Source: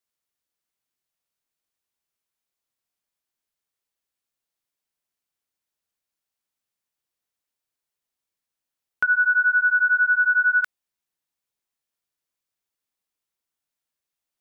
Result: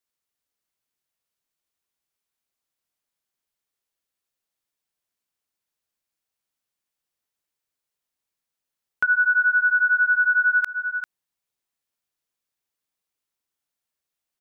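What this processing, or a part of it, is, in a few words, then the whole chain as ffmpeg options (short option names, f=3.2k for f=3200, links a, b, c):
ducked delay: -filter_complex "[0:a]asplit=3[a][b][c];[b]adelay=394,volume=-8dB[d];[c]apad=whole_len=652837[e];[d][e]sidechaincompress=threshold=-32dB:ratio=8:attack=16:release=135[f];[a][f]amix=inputs=2:normalize=0"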